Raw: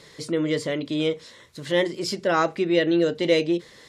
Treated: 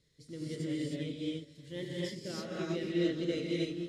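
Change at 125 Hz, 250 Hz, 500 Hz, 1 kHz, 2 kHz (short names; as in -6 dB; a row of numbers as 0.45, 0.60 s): -6.0, -10.0, -14.5, -23.0, -16.0 dB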